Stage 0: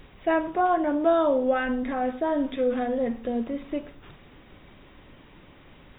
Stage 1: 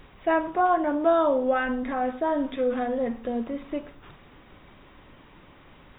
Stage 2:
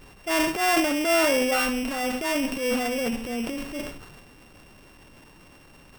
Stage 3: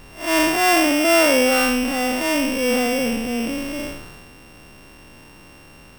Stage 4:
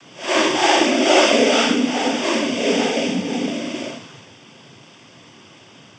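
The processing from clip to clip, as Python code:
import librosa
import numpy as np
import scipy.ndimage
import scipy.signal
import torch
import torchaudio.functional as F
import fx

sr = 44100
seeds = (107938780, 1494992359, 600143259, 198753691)

y1 = fx.peak_eq(x, sr, hz=1100.0, db=4.5, octaves=1.2)
y1 = y1 * librosa.db_to_amplitude(-1.5)
y2 = np.r_[np.sort(y1[:len(y1) // 16 * 16].reshape(-1, 16), axis=1).ravel(), y1[len(y1) // 16 * 16:]]
y2 = fx.transient(y2, sr, attack_db=-8, sustain_db=9)
y3 = fx.spec_blur(y2, sr, span_ms=152.0)
y3 = y3 * librosa.db_to_amplitude(7.5)
y4 = fx.noise_vocoder(y3, sr, seeds[0], bands=16)
y4 = y4 * librosa.db_to_amplitude(1.5)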